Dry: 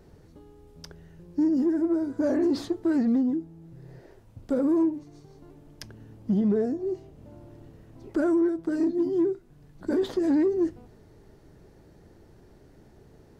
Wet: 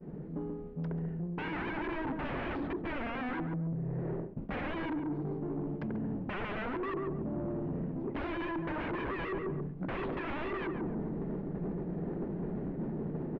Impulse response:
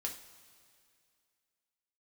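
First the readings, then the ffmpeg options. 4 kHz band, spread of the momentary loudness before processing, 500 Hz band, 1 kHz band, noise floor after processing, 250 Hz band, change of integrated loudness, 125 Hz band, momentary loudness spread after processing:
n/a, 14 LU, -9.0 dB, +5.0 dB, -41 dBFS, -10.0 dB, -11.0 dB, +5.0 dB, 2 LU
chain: -filter_complex "[0:a]lowshelf=f=130:t=q:w=3:g=-8.5,agate=range=-33dB:threshold=-48dB:ratio=3:detection=peak,aeval=exprs='(mod(21.1*val(0)+1,2)-1)/21.1':c=same,tiltshelf=f=840:g=6.5,asplit=2[a][b];[b]adelay=138,lowpass=f=830:p=1,volume=-6dB,asplit=2[c][d];[d]adelay=138,lowpass=f=830:p=1,volume=0.25,asplit=2[e][f];[f]adelay=138,lowpass=f=830:p=1,volume=0.25[g];[c][e][g]amix=inputs=3:normalize=0[h];[a][h]amix=inputs=2:normalize=0,dynaudnorm=f=1000:g=3:m=13.5dB,alimiter=limit=-15dB:level=0:latency=1:release=261,areverse,acompressor=threshold=-38dB:ratio=10,areverse,asoftclip=type=tanh:threshold=-38dB,lowpass=f=2.5k:w=0.5412,lowpass=f=2.5k:w=1.3066,volume=8dB"

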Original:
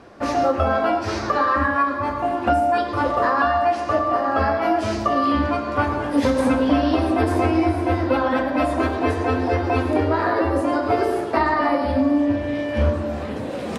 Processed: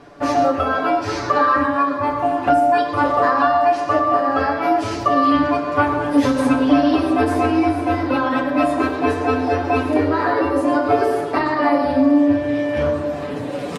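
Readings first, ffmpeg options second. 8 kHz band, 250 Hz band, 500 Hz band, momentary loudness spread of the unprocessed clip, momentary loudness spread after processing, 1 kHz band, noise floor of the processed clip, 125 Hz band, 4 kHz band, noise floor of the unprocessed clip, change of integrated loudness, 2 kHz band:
n/a, +3.5 dB, +2.5 dB, 4 LU, 5 LU, +3.0 dB, -26 dBFS, -3.0 dB, +2.0 dB, -28 dBFS, +2.5 dB, +2.0 dB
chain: -af "aecho=1:1:6.9:0.75"

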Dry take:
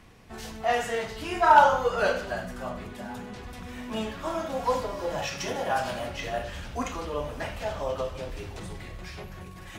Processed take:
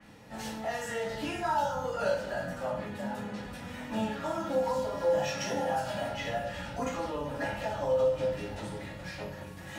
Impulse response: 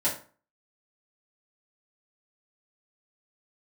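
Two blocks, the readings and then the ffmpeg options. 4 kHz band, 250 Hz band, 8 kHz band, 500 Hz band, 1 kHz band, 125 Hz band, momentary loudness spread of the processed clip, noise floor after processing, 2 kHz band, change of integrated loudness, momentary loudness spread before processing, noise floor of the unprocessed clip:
-4.0 dB, 0.0 dB, -3.0 dB, -1.0 dB, -8.5 dB, -1.5 dB, 12 LU, -44 dBFS, -6.5 dB, -5.0 dB, 17 LU, -43 dBFS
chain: -filter_complex "[0:a]acrossover=split=200|4800[a][b][c];[a]tremolo=f=110:d=0.667[d];[b]acompressor=threshold=-33dB:ratio=6[e];[d][e][c]amix=inputs=3:normalize=0[f];[1:a]atrim=start_sample=2205,asetrate=41454,aresample=44100[g];[f][g]afir=irnorm=-1:irlink=0,adynamicequalizer=threshold=0.00631:dfrequency=4400:dqfactor=0.7:tfrequency=4400:tqfactor=0.7:attack=5:release=100:ratio=0.375:range=2:mode=cutabove:tftype=highshelf,volume=-7.5dB"

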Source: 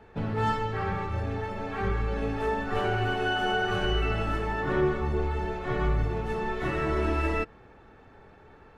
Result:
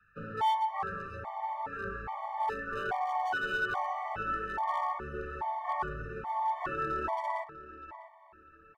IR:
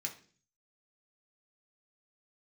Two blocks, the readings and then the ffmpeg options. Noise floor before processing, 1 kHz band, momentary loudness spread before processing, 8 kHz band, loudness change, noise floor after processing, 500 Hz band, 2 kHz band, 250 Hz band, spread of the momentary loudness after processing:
-53 dBFS, +0.5 dB, 5 LU, n/a, -5.0 dB, -58 dBFS, -10.5 dB, -4.0 dB, -15.0 dB, 9 LU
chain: -filter_complex "[0:a]bandreject=f=60:t=h:w=6,bandreject=f=120:t=h:w=6,bandreject=f=180:t=h:w=6,bandreject=f=240:t=h:w=6,bandreject=f=300:t=h:w=6,bandreject=f=360:t=h:w=6,acrossover=split=170|1300[a][b][c];[b]aeval=exprs='sgn(val(0))*max(abs(val(0))-0.00501,0)':c=same[d];[a][d][c]amix=inputs=3:normalize=0,acrossover=split=370 2100:gain=0.141 1 0.2[e][f][g];[e][f][g]amix=inputs=3:normalize=0,acontrast=69,equalizer=f=160:t=o:w=0.67:g=6,equalizer=f=400:t=o:w=0.67:g=-5,equalizer=f=1k:t=o:w=0.67:g=9,equalizer=f=4k:t=o:w=0.67:g=-3,asoftclip=type=hard:threshold=-16.5dB,asplit=2[h][i];[i]adelay=647,lowpass=f=3k:p=1,volume=-14dB,asplit=2[j][k];[k]adelay=647,lowpass=f=3k:p=1,volume=0.33,asplit=2[l][m];[m]adelay=647,lowpass=f=3k:p=1,volume=0.33[n];[h][j][l][n]amix=inputs=4:normalize=0,afftfilt=real='re*gt(sin(2*PI*1.2*pts/sr)*(1-2*mod(floor(b*sr/1024/600),2)),0)':imag='im*gt(sin(2*PI*1.2*pts/sr)*(1-2*mod(floor(b*sr/1024/600),2)),0)':win_size=1024:overlap=0.75,volume=-6.5dB"

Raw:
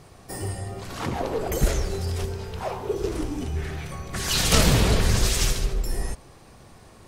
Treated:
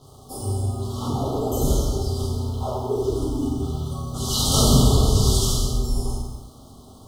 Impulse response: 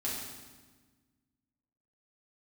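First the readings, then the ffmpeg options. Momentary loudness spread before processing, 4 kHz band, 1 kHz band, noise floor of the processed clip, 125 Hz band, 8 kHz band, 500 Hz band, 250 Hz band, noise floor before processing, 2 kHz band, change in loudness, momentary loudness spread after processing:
14 LU, +1.5 dB, +1.5 dB, -46 dBFS, +4.5 dB, +1.5 dB, +2.5 dB, +5.0 dB, -49 dBFS, under -25 dB, +3.0 dB, 13 LU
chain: -filter_complex "[1:a]atrim=start_sample=2205,afade=t=out:st=0.4:d=0.01,atrim=end_sample=18081[a];[0:a][a]afir=irnorm=-1:irlink=0,acrusher=bits=7:mix=0:aa=0.5,asuperstop=centerf=2000:order=20:qfactor=1.2,volume=-2dB"

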